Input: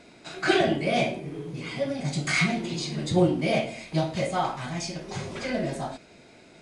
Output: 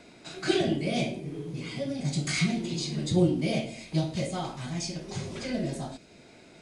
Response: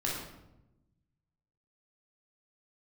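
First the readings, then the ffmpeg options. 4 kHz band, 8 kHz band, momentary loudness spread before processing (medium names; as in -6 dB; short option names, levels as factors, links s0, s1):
-2.0 dB, 0.0 dB, 12 LU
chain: -filter_complex "[0:a]acrossover=split=440|3000[s0][s1][s2];[s1]acompressor=threshold=0.00126:ratio=1.5[s3];[s0][s3][s2]amix=inputs=3:normalize=0"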